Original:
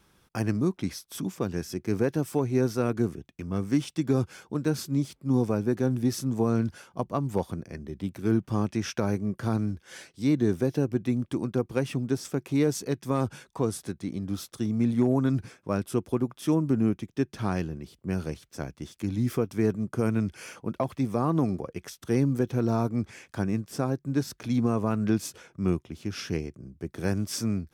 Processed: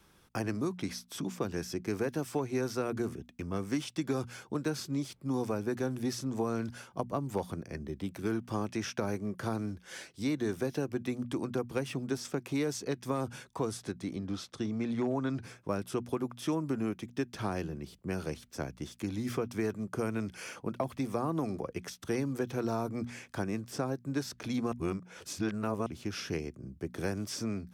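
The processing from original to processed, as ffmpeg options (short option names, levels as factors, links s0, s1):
-filter_complex "[0:a]asettb=1/sr,asplit=3[s0][s1][s2];[s0]atrim=end=14.164[s3];[s1]atrim=start=14.16:end=15.43,asetpts=PTS-STARTPTS,afade=t=in:d=0.004:c=qsin,afade=t=out:st=1.266:d=0.004:c=qsin,lowpass=5500[s4];[s2]atrim=start=15.426[s5];[s3][s4]acrossfade=d=0.004:c1=hsin:c2=qsin[s6];[s6][s5]acrossfade=d=0.004:c1=qsin:c2=hsin,asplit=3[s7][s8][s9];[s7]atrim=end=24.722[s10];[s8]atrim=start=24.718:end=25.862,asetpts=PTS-STARTPTS,areverse[s11];[s9]atrim=start=25.858[s12];[s10][s11]acrossfade=d=0.004:c1=hsin:c2=hsin[s13];[s13][s12]acrossfade=d=0.004:c1=hsin:c2=hsin,bandreject=f=60:t=h:w=6,bandreject=f=120:t=h:w=6,bandreject=f=180:t=h:w=6,bandreject=f=240:t=h:w=6,acrossover=split=320|760|7500[s14][s15][s16][s17];[s14]acompressor=threshold=0.0141:ratio=4[s18];[s15]acompressor=threshold=0.02:ratio=4[s19];[s16]acompressor=threshold=0.0126:ratio=4[s20];[s17]acompressor=threshold=0.002:ratio=4[s21];[s18][s19][s20][s21]amix=inputs=4:normalize=0"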